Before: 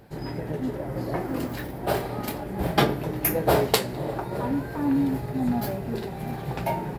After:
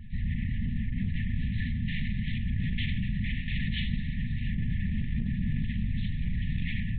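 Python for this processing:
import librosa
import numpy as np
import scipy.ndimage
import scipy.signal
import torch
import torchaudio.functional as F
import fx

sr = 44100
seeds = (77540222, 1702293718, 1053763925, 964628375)

y = x * np.sin(2.0 * np.pi * 45.0 * np.arange(len(x)) / sr)
y = fx.hum_notches(y, sr, base_hz=60, count=8)
y = fx.room_shoebox(y, sr, seeds[0], volume_m3=33.0, walls='mixed', distance_m=2.0)
y = 10.0 ** (-21.5 / 20.0) * np.tanh(y / 10.0 ** (-21.5 / 20.0))
y = fx.lpc_vocoder(y, sr, seeds[1], excitation='whisper', order=10)
y = fx.brickwall_bandstop(y, sr, low_hz=250.0, high_hz=1700.0)
y = fx.over_compress(y, sr, threshold_db=-25.0, ratio=-0.5)
y = y * 10.0 ** (-2.5 / 20.0)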